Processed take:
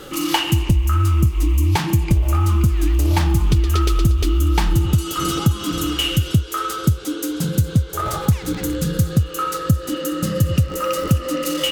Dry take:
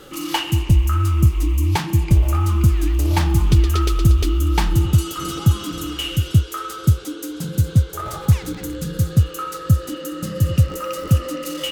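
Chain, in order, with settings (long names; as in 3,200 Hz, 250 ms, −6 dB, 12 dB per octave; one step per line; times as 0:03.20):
downward compressor 4 to 1, threshold −19 dBFS, peak gain reduction 9.5 dB
level +5.5 dB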